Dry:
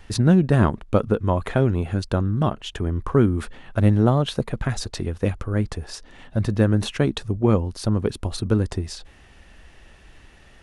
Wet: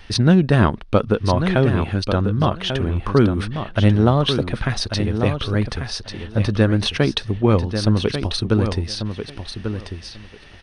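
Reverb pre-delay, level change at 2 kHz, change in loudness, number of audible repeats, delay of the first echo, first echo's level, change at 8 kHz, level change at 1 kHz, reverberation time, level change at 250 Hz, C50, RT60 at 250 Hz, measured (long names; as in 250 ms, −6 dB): no reverb audible, +6.5 dB, +2.5 dB, 2, 1,142 ms, −8.0 dB, +2.5 dB, +4.5 dB, no reverb audible, +2.5 dB, no reverb audible, no reverb audible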